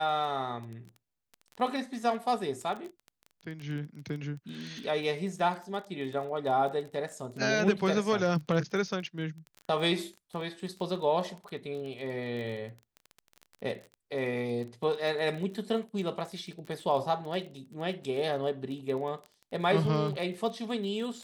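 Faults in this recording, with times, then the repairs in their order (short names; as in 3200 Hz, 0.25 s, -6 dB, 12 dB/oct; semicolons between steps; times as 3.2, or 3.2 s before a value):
crackle 23/s -37 dBFS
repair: de-click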